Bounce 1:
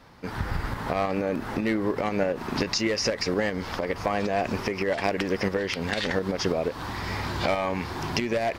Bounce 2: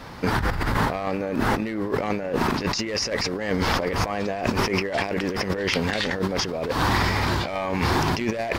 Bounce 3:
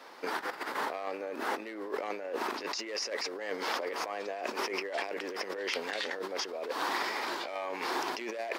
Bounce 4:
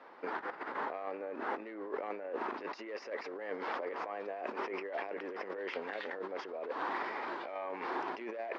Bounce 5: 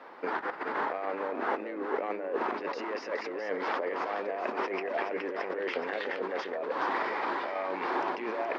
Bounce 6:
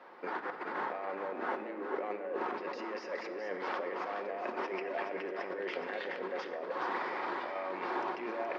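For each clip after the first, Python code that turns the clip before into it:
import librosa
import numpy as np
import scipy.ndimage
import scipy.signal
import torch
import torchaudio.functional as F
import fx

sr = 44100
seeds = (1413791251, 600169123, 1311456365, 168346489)

y1 = fx.over_compress(x, sr, threshold_db=-33.0, ratio=-1.0)
y1 = y1 * librosa.db_to_amplitude(8.0)
y2 = scipy.signal.sosfilt(scipy.signal.butter(4, 340.0, 'highpass', fs=sr, output='sos'), y1)
y2 = y2 * librosa.db_to_amplitude(-9.0)
y3 = scipy.signal.sosfilt(scipy.signal.butter(2, 1900.0, 'lowpass', fs=sr, output='sos'), y2)
y3 = y3 * librosa.db_to_amplitude(-3.0)
y4 = y3 + 10.0 ** (-7.0 / 20.0) * np.pad(y3, (int(422 * sr / 1000.0), 0))[:len(y3)]
y4 = y4 * librosa.db_to_amplitude(6.0)
y5 = fx.room_shoebox(y4, sr, seeds[0], volume_m3=3500.0, walls='mixed', distance_m=0.97)
y5 = y5 * librosa.db_to_amplitude(-5.5)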